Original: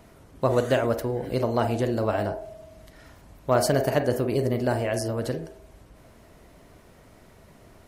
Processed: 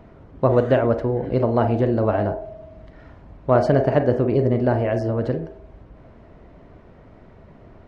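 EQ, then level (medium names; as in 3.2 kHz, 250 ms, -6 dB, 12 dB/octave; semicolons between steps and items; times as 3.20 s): tape spacing loss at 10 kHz 37 dB; +7.0 dB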